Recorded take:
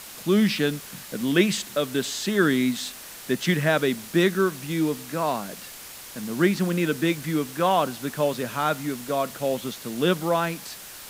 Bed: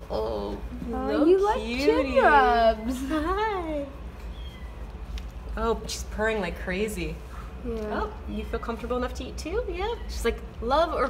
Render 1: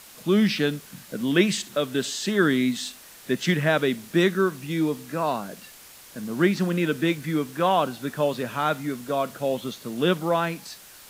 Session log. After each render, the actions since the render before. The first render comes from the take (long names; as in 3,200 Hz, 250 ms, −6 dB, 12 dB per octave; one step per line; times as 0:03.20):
noise reduction from a noise print 6 dB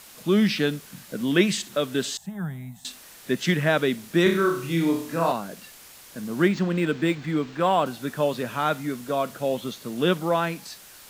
0:02.17–0:02.85: drawn EQ curve 180 Hz 0 dB, 290 Hz −28 dB, 480 Hz −22 dB, 780 Hz +2 dB, 1,200 Hz −17 dB, 2,100 Hz −20 dB, 3,300 Hz −26 dB, 4,700 Hz −27 dB, 7,500 Hz −16 dB, 14,000 Hz −7 dB
0:04.23–0:05.32: flutter between parallel walls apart 5.1 metres, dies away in 0.49 s
0:06.48–0:07.86: linearly interpolated sample-rate reduction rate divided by 4×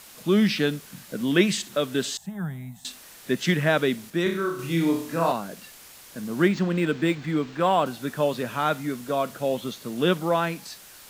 0:04.10–0:04.59: clip gain −5 dB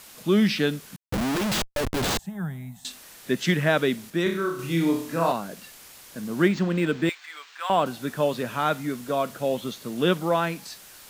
0:00.96–0:02.19: comparator with hysteresis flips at −29.5 dBFS
0:07.09–0:07.70: Bessel high-pass filter 1,400 Hz, order 4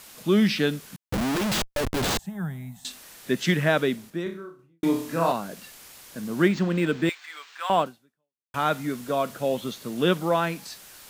0:03.65–0:04.83: fade out and dull
0:07.81–0:08.54: fade out exponential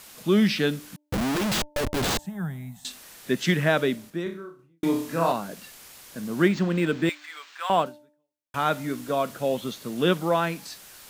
hum removal 297.5 Hz, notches 3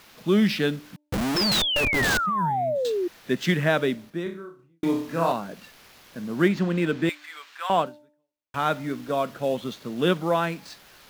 running median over 5 samples
0:01.36–0:03.08: sound drawn into the spectrogram fall 340–5,400 Hz −25 dBFS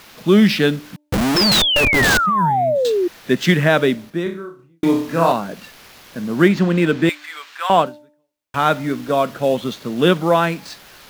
level +8 dB
brickwall limiter −2 dBFS, peak gain reduction 1.5 dB